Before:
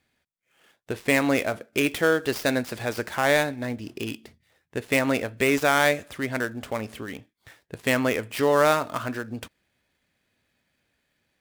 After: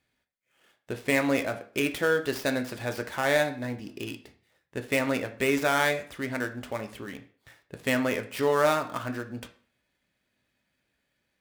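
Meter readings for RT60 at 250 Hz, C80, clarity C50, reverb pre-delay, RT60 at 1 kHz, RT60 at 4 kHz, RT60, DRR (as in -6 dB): 0.45 s, 17.5 dB, 13.0 dB, 3 ms, 0.45 s, 0.40 s, 0.45 s, 6.5 dB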